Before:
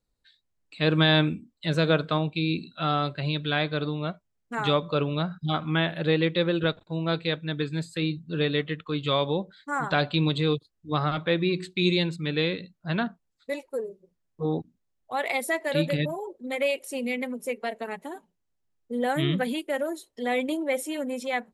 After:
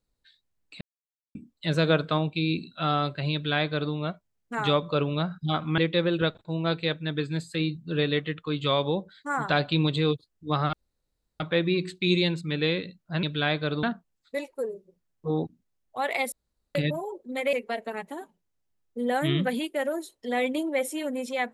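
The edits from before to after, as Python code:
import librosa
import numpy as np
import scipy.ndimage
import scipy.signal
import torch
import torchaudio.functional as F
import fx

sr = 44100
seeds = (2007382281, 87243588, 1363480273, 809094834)

y = fx.edit(x, sr, fx.silence(start_s=0.81, length_s=0.54),
    fx.duplicate(start_s=3.33, length_s=0.6, to_s=12.98),
    fx.cut(start_s=5.78, length_s=0.42),
    fx.insert_room_tone(at_s=11.15, length_s=0.67),
    fx.room_tone_fill(start_s=15.47, length_s=0.43),
    fx.cut(start_s=16.68, length_s=0.79), tone=tone)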